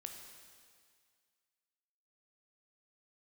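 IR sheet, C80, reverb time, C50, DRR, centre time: 6.0 dB, 2.0 s, 4.5 dB, 3.0 dB, 52 ms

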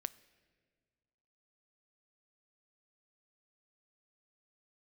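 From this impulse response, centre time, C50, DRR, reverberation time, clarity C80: 3 ms, 19.0 dB, 16.5 dB, 1.8 s, 20.5 dB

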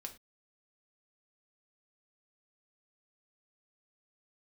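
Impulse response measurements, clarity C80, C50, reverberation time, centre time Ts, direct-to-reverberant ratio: 19.0 dB, 13.0 dB, not exponential, 8 ms, 3.0 dB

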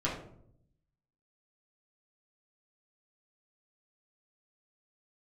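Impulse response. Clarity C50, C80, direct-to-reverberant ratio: 5.0 dB, 8.5 dB, -6.0 dB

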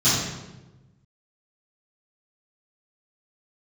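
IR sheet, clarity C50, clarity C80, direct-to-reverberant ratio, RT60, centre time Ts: -0.5 dB, 2.5 dB, -16.0 dB, 1.1 s, 76 ms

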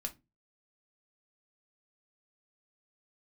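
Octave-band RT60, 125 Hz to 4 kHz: 0.45, 0.35, 0.25, 0.20, 0.20, 0.15 s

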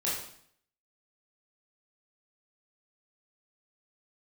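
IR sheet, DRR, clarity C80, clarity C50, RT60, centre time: -7.5 dB, 6.5 dB, 2.5 dB, 0.60 s, 51 ms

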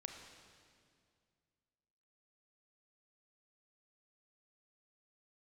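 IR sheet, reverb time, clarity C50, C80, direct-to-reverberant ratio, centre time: 2.2 s, 4.5 dB, 6.0 dB, 3.5 dB, 52 ms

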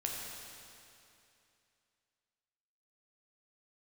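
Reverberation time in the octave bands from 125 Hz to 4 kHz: 2.7, 2.7, 2.7, 2.7, 2.7, 2.6 s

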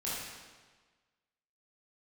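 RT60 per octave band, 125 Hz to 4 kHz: 1.4, 1.4, 1.4, 1.4, 1.3, 1.2 s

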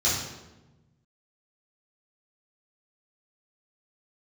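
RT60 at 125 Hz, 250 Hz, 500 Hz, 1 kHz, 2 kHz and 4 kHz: 1.9, 1.6, 1.2, 0.95, 0.85, 0.75 s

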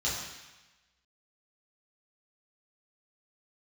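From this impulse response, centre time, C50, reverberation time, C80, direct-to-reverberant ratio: 69 ms, 1.5 dB, 1.1 s, 4.0 dB, -8.5 dB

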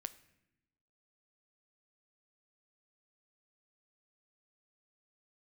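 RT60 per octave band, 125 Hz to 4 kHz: 1.2, 1.3, 1.0, 0.80, 0.90, 0.70 s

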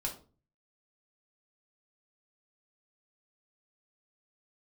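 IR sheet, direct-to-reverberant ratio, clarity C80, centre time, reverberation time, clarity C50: -0.5 dB, 15.5 dB, 16 ms, 0.35 s, 10.0 dB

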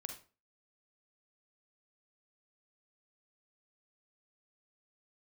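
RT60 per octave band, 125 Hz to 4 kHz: 0.40, 0.40, 0.40, 0.35, 0.30, 0.30 s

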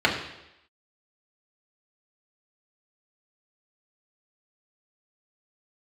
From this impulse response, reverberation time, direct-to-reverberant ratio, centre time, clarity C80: 0.85 s, -3.0 dB, 30 ms, 9.0 dB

